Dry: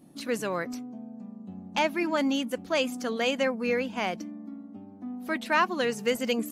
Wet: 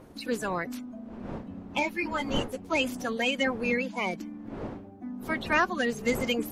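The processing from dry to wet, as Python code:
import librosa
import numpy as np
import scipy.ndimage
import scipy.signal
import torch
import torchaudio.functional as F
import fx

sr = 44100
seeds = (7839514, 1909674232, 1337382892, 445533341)

y = fx.spec_quant(x, sr, step_db=30)
y = fx.dmg_wind(y, sr, seeds[0], corner_hz=490.0, level_db=-40.0)
y = fx.ensemble(y, sr, at=(1.79, 2.68), fade=0.02)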